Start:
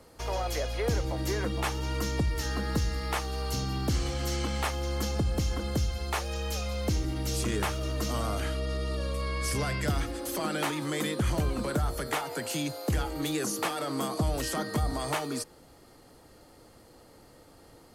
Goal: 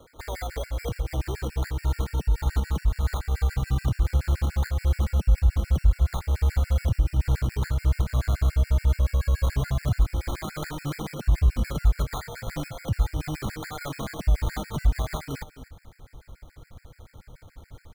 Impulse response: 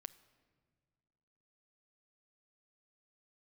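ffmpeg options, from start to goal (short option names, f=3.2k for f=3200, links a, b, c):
-filter_complex "[0:a]acrusher=samples=16:mix=1:aa=0.000001,alimiter=level_in=1.5dB:limit=-24dB:level=0:latency=1:release=240,volume=-1.5dB,asubboost=boost=7:cutoff=110,asplit=2[a][b];[b]aecho=0:1:252:0.188[c];[a][c]amix=inputs=2:normalize=0,afftfilt=real='re*gt(sin(2*PI*7*pts/sr)*(1-2*mod(floor(b*sr/1024/1400),2)),0)':imag='im*gt(sin(2*PI*7*pts/sr)*(1-2*mod(floor(b*sr/1024/1400),2)),0)':win_size=1024:overlap=0.75,volume=3.5dB"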